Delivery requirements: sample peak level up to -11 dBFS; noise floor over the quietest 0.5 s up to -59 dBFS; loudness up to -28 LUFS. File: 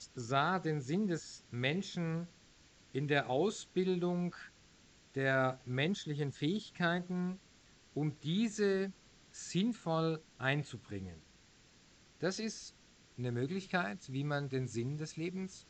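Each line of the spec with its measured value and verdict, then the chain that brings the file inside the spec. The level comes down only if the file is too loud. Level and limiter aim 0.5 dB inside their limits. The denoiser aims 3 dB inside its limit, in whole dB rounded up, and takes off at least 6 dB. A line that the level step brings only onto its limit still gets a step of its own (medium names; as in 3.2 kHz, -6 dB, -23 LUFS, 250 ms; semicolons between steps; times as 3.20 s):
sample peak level -17.5 dBFS: pass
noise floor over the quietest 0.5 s -64 dBFS: pass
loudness -36.5 LUFS: pass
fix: none needed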